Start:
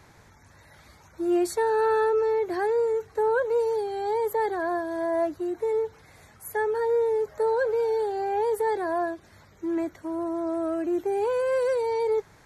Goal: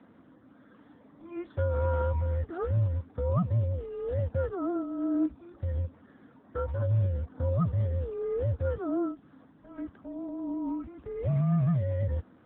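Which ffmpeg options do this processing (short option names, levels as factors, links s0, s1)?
-af "lowpass=f=1200:p=1,afreqshift=-360" -ar 8000 -c:a libopencore_amrnb -b:a 10200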